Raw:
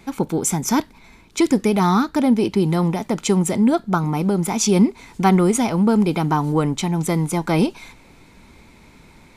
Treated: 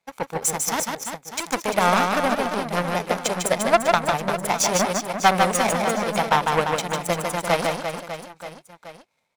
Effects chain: in parallel at -10 dB: sine folder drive 11 dB, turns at -4 dBFS; on the sum: HPF 110 Hz 24 dB/oct; resonant low shelf 430 Hz -7.5 dB, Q 3; power-law curve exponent 2; reverse bouncing-ball echo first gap 0.15 s, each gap 1.3×, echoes 5

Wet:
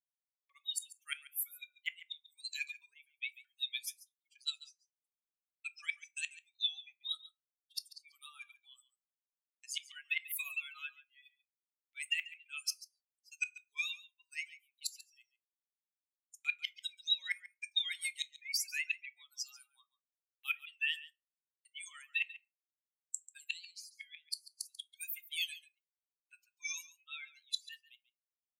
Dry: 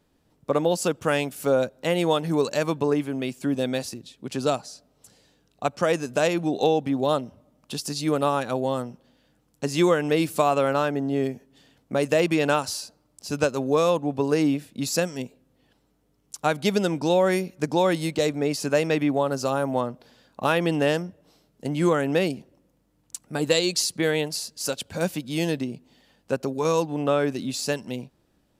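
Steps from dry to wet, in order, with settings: per-bin expansion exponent 3; gate -53 dBFS, range -18 dB; Chebyshev high-pass 2200 Hz, order 5; vibrato 3.4 Hz 68 cents; in parallel at +2 dB: compressor 5:1, threshold -48 dBFS, peak gain reduction 20.5 dB; on the sum: flipped gate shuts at -30 dBFS, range -31 dB; echo 0.14 s -17 dB; on a send at -12 dB: reverb RT60 0.30 s, pre-delay 5 ms; on the sum: gain +8.5 dB

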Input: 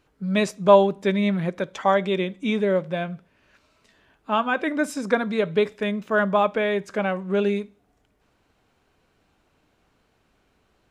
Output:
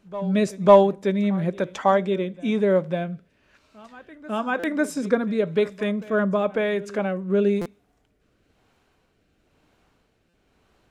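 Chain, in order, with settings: dynamic EQ 2900 Hz, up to -5 dB, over -39 dBFS, Q 0.77; in parallel at -9 dB: hard clip -10.5 dBFS, distortion -17 dB; on the sum: rotary speaker horn 1 Hz; reverse echo 0.548 s -19.5 dB; stuck buffer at 4.59/7.61/10.29, samples 256, times 7

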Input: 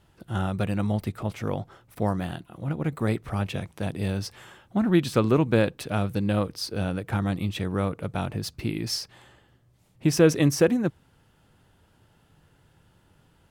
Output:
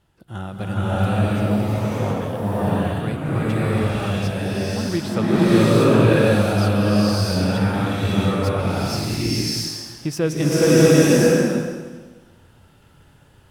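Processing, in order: bloom reverb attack 0.68 s, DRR -11.5 dB; gain -3.5 dB

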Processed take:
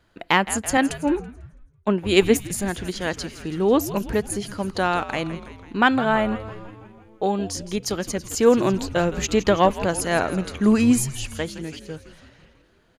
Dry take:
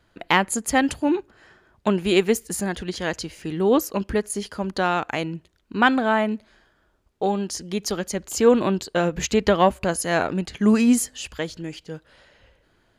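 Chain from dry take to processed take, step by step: frequency-shifting echo 0.165 s, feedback 62%, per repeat -110 Hz, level -14 dB; 0.77–2.54 three-band expander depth 100%

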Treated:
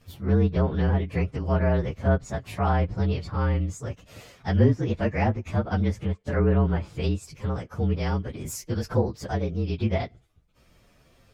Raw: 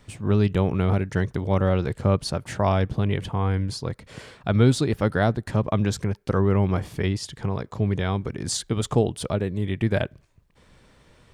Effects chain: inharmonic rescaling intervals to 115%; treble ducked by the level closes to 2200 Hz, closed at -17 dBFS

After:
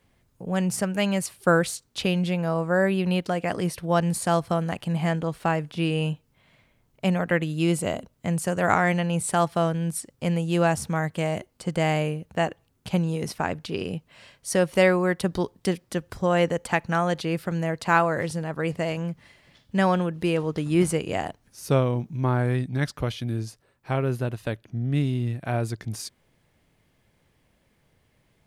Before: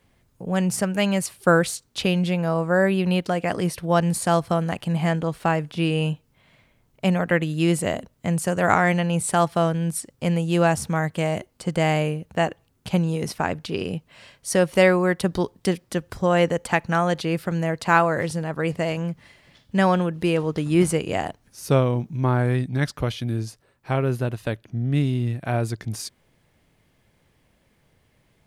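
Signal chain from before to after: 7.51–8.14 notch 1800 Hz, Q 7; gain -2.5 dB

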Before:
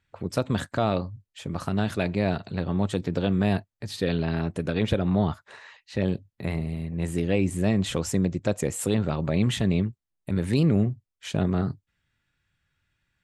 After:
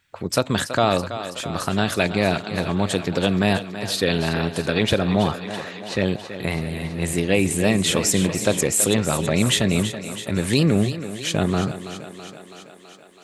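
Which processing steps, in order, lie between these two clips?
tilt +2 dB/oct; thinning echo 0.328 s, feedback 70%, high-pass 190 Hz, level -11 dB; 6.46–8.63 warbling echo 0.282 s, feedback 51%, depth 147 cents, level -12 dB; gain +7.5 dB

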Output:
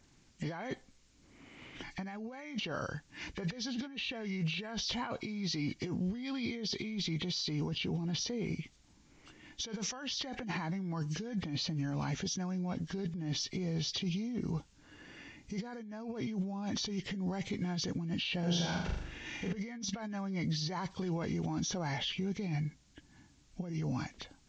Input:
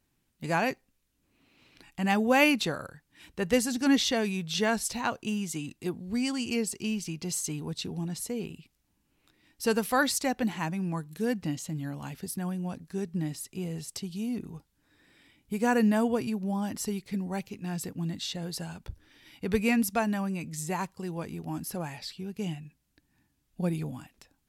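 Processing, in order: nonlinear frequency compression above 1600 Hz 1.5:1; negative-ratio compressor -39 dBFS, ratio -1; limiter -30.5 dBFS, peak gain reduction 9.5 dB; 18.39–19.53 flutter echo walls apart 6.9 m, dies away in 0.78 s; gain +3 dB

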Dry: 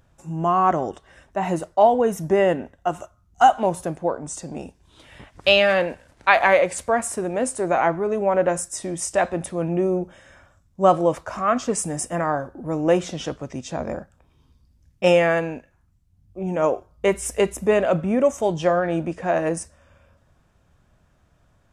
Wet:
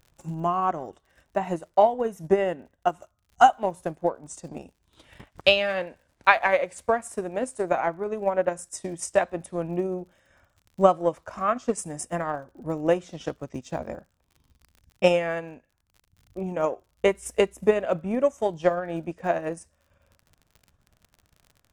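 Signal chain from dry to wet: crackle 58/s -38 dBFS; transient shaper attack +9 dB, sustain -6 dB; gain -8 dB

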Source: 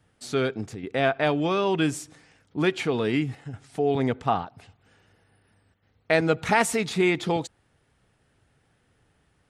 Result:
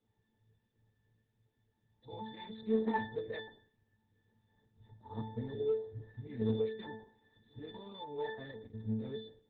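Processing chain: whole clip reversed; band shelf 5500 Hz +11 dB 1.3 oct; octave resonator A, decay 0.5 s; in parallel at -9.5 dB: hard clip -33.5 dBFS, distortion -12 dB; on the sum: added harmonics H 2 -27 dB, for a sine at -23 dBFS; gain +2 dB; Opus 8 kbps 48000 Hz

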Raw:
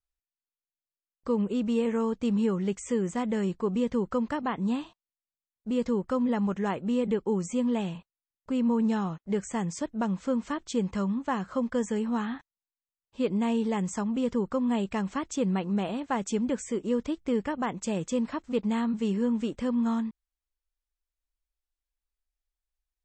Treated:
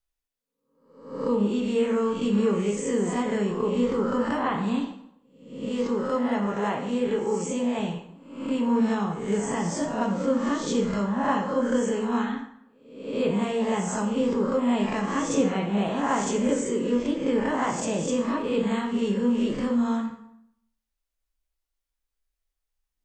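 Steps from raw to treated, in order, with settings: spectral swells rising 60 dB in 0.71 s; 5.69–7.79 low shelf 330 Hz -5 dB; plate-style reverb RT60 0.73 s, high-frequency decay 0.75×, DRR 1.5 dB

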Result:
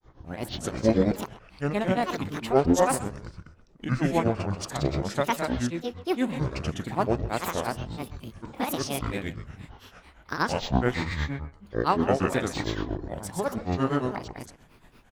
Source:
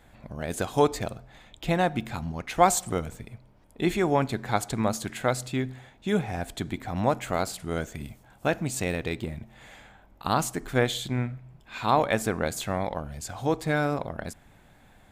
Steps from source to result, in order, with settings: formant shift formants -3 st; on a send: loudspeakers at several distances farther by 55 m -8 dB, 70 m -2 dB; on the sum: grains 0.167 s, grains 8.8/s, pitch spread up and down by 12 st; speakerphone echo 0.13 s, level -14 dB

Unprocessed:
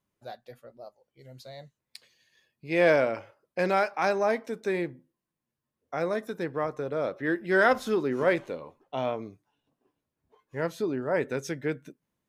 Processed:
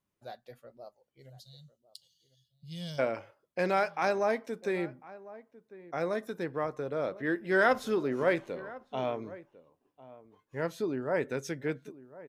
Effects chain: spectral gain 1.3–2.99, 210–2800 Hz -27 dB; outdoor echo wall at 180 m, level -18 dB; gain -3 dB

